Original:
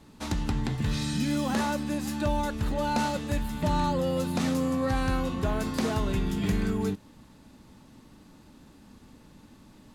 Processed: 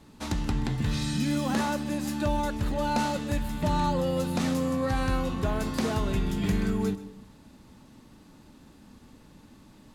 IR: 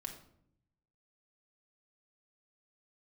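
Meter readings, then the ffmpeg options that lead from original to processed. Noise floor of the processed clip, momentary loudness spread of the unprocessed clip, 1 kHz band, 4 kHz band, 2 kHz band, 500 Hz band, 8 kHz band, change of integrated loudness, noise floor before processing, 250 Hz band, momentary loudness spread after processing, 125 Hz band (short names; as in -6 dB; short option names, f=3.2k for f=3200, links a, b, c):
-54 dBFS, 3 LU, +0.5 dB, 0.0 dB, 0.0 dB, 0.0 dB, 0.0 dB, 0.0 dB, -54 dBFS, 0.0 dB, 4 LU, +0.5 dB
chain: -filter_complex "[0:a]asplit=2[a][b];[1:a]atrim=start_sample=2205,adelay=128[c];[b][c]afir=irnorm=-1:irlink=0,volume=-13dB[d];[a][d]amix=inputs=2:normalize=0"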